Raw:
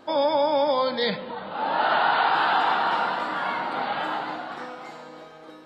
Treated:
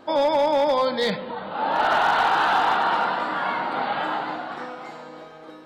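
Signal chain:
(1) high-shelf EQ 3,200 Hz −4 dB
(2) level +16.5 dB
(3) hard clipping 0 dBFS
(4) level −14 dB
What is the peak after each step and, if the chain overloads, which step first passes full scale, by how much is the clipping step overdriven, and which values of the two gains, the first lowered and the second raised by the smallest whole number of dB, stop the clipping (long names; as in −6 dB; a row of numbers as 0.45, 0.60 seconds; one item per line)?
−11.0, +5.5, 0.0, −14.0 dBFS
step 2, 5.5 dB
step 2 +10.5 dB, step 4 −8 dB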